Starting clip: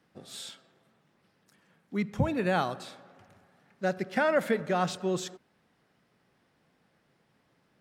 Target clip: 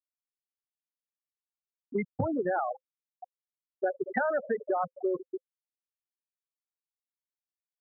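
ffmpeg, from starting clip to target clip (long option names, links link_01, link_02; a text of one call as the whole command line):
ffmpeg -i in.wav -filter_complex "[0:a]aeval=exprs='val(0)+0.5*0.0266*sgn(val(0))':channel_layout=same,equalizer=frequency=100:width=4.8:gain=14.5,acontrast=55,acrossover=split=300 3500:gain=0.178 1 0.0891[link_01][link_02][link_03];[link_01][link_02][link_03]amix=inputs=3:normalize=0,afftfilt=real='re*gte(hypot(re,im),0.251)':imag='im*gte(hypot(re,im),0.251)':win_size=1024:overlap=0.75,acompressor=threshold=-33dB:ratio=6,bandreject=frequency=520:width=16,volume=6dB" out.wav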